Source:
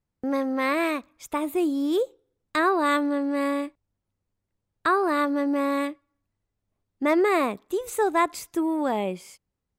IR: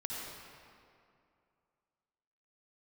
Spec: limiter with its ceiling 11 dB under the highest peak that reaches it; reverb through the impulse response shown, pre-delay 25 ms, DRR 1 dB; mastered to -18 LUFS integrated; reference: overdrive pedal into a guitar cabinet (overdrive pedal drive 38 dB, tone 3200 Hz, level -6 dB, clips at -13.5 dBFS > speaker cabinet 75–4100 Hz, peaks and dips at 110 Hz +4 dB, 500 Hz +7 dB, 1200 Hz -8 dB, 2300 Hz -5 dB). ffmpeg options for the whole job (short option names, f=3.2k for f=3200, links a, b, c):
-filter_complex "[0:a]alimiter=limit=-22dB:level=0:latency=1,asplit=2[a][b];[1:a]atrim=start_sample=2205,adelay=25[c];[b][c]afir=irnorm=-1:irlink=0,volume=-3dB[d];[a][d]amix=inputs=2:normalize=0,asplit=2[e][f];[f]highpass=f=720:p=1,volume=38dB,asoftclip=type=tanh:threshold=-13.5dB[g];[e][g]amix=inputs=2:normalize=0,lowpass=f=3.2k:p=1,volume=-6dB,highpass=75,equalizer=f=110:t=q:w=4:g=4,equalizer=f=500:t=q:w=4:g=7,equalizer=f=1.2k:t=q:w=4:g=-8,equalizer=f=2.3k:t=q:w=4:g=-5,lowpass=f=4.1k:w=0.5412,lowpass=f=4.1k:w=1.3066,volume=2.5dB"